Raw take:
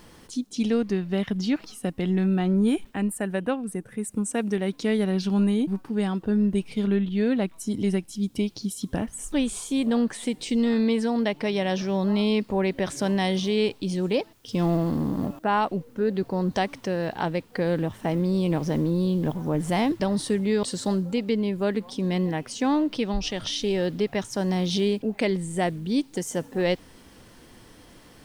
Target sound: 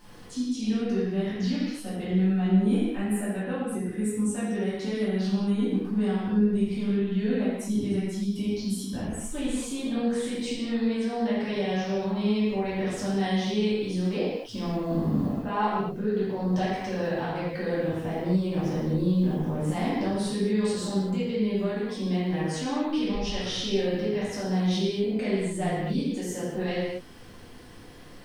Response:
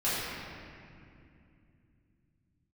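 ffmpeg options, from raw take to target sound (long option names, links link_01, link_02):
-filter_complex "[0:a]alimiter=limit=-20.5dB:level=0:latency=1:release=236[link_01];[1:a]atrim=start_sample=2205,afade=type=out:start_time=0.31:duration=0.01,atrim=end_sample=14112[link_02];[link_01][link_02]afir=irnorm=-1:irlink=0,volume=-7.5dB"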